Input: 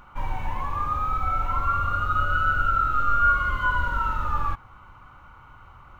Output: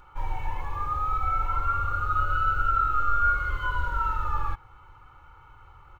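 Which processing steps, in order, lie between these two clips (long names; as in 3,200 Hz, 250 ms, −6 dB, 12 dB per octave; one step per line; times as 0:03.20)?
comb filter 2.3 ms, depth 72%
level −5.5 dB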